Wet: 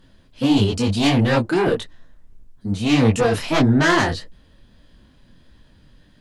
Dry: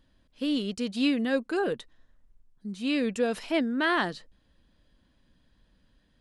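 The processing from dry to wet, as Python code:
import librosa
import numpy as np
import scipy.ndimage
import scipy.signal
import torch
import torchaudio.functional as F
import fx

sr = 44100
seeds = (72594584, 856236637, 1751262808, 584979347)

y = fx.octave_divider(x, sr, octaves=1, level_db=-1.0)
y = fx.fold_sine(y, sr, drive_db=9, ceiling_db=-12.0)
y = fx.detune_double(y, sr, cents=56)
y = y * 10.0 ** (3.0 / 20.0)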